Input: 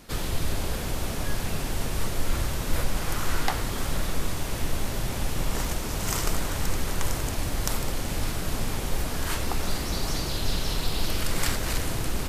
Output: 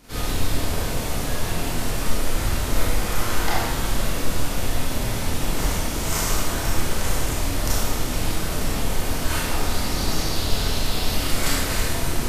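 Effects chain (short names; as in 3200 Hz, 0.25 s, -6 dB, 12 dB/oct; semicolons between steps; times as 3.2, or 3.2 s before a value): Schroeder reverb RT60 0.91 s, combs from 25 ms, DRR -8 dB; gain -3.5 dB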